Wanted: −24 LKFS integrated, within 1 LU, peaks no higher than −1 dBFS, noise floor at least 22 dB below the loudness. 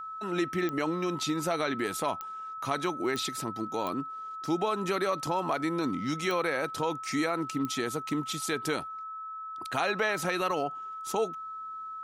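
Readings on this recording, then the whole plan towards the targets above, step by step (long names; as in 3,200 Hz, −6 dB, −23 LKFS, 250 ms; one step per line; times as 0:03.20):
number of clicks 6; interfering tone 1,300 Hz; level of the tone −37 dBFS; integrated loudness −31.5 LKFS; sample peak −14.0 dBFS; target loudness −24.0 LKFS
→ click removal
notch filter 1,300 Hz, Q 30
level +7.5 dB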